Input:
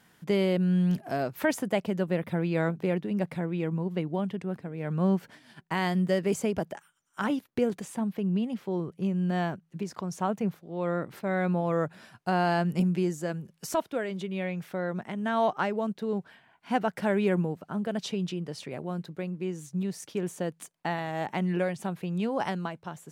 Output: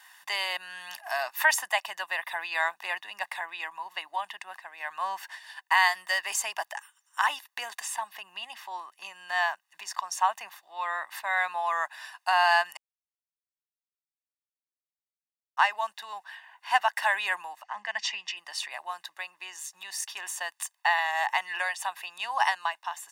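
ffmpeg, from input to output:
-filter_complex "[0:a]asettb=1/sr,asplit=3[a][b][c];[a]atrim=end=17.634[d];[b]atrim=start=17.63:end=18.37,asetpts=PTS-STARTPTS,afade=t=in:d=0.004:c=qsin,afade=t=out:st=0.736:d=0.004:c=qsin,highpass=200,equalizer=f=210:t=q:w=4:g=10,equalizer=f=320:t=q:w=4:g=-9,equalizer=f=620:t=q:w=4:g=-5,equalizer=f=1.4k:t=q:w=4:g=-8,equalizer=f=2k:t=q:w=4:g=9,equalizer=f=3.8k:t=q:w=4:g=-8,lowpass=f=6.5k:w=0.5412,lowpass=f=6.5k:w=1.3066[e];[c]atrim=start=18.366[f];[d][e]acrossfade=d=0.004:c1=hsin:c2=qsin[g];[g][f]acrossfade=d=0.004:c1=qsin:c2=hsin,asplit=3[h][i][j];[h]atrim=end=12.77,asetpts=PTS-STARTPTS,afade=t=out:st=12.766:d=0.004:c=hsin[k];[i]atrim=start=12.77:end=15.57,asetpts=PTS-STARTPTS,volume=0[l];[j]atrim=start=15.57,asetpts=PTS-STARTPTS,afade=t=in:d=0.004:c=hsin[m];[k][l][m]concat=n=3:v=0:a=1,highpass=f=940:w=0.5412,highpass=f=940:w=1.3066,aecho=1:1:1.1:0.77,volume=8dB"

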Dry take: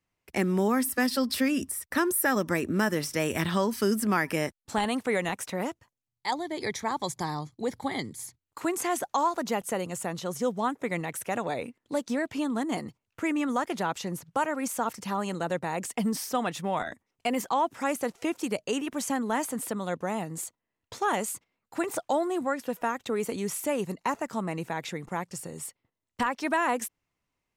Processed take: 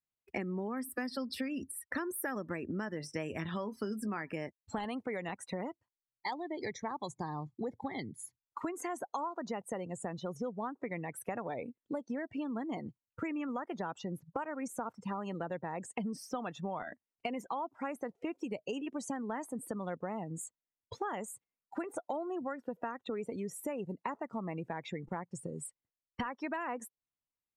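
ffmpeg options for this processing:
-filter_complex "[0:a]asettb=1/sr,asplit=3[a][b][c];[a]atrim=end=2.984[d];[b]atrim=start=2.98:end=4.22,asetpts=PTS-STARTPTS,afade=t=in:d=0.004:c=qsin,afade=t=out:st=1.236:d=0.004:c=qsin,asplit=2[e][f];[f]adelay=19,volume=-12dB[g];[e][g]amix=inputs=2:normalize=0,atrim=end_sample=54684[h];[c]atrim=start=4.216[i];[d][h]acrossfade=d=0.004:c1=hsin:c2=qsin[j];[j][i]acrossfade=d=0.004:c1=qsin:c2=hsin,afftdn=nr=24:nf=-37,highshelf=f=5.1k:g=-6.5,acompressor=threshold=-41dB:ratio=5,volume=4.5dB"

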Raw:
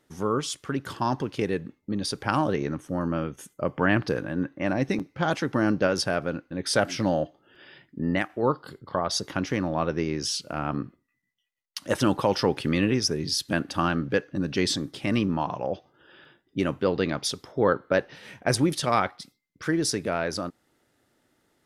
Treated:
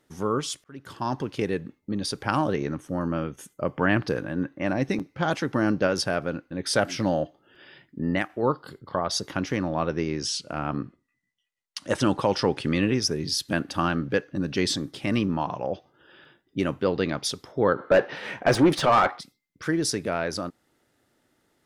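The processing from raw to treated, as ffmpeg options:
-filter_complex "[0:a]asettb=1/sr,asplit=3[a][b][c];[a]atrim=end=9.564[d];[b]atrim=start=9.56:end=12.97,asetpts=PTS-STARTPTS,afade=t=in:d=0.004:c=qsin,afade=t=out:st=3.406:d=0.004:c=qsin,lowpass=f=10k:w=0.5412,lowpass=f=10k:w=1.3066[e];[c]atrim=start=12.966[f];[d][e]acrossfade=d=0.004:c1=hsin:c2=qsin[g];[g][f]acrossfade=d=0.004:c1=qsin:c2=hsin,asplit=3[h][i][j];[h]afade=t=out:st=17.77:d=0.02[k];[i]asplit=2[l][m];[m]highpass=f=720:p=1,volume=23dB,asoftclip=type=tanh:threshold=-7.5dB[n];[l][n]amix=inputs=2:normalize=0,lowpass=f=1.1k:p=1,volume=-6dB,afade=t=in:st=17.77:d=0.02,afade=t=out:st=19.19:d=0.02[o];[j]afade=t=in:st=19.19:d=0.02[p];[k][o][p]amix=inputs=3:normalize=0,asplit=2[q][r];[q]atrim=end=0.64,asetpts=PTS-STARTPTS,afade=t=out:st=0.636:d=0.004:c=hsin[s];[r]atrim=start=0.64,asetpts=PTS-STARTPTS,afade=t=in:d=0.79:c=qsin[t];[s][t]concat=n=2:v=0:a=1"

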